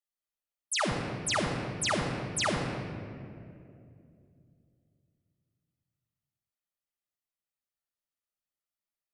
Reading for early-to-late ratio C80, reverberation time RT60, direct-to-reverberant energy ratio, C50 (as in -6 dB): 4.0 dB, 2.5 s, -5.5 dB, 3.5 dB